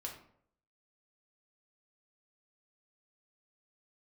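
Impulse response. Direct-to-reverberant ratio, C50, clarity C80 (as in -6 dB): -0.5 dB, 7.0 dB, 10.5 dB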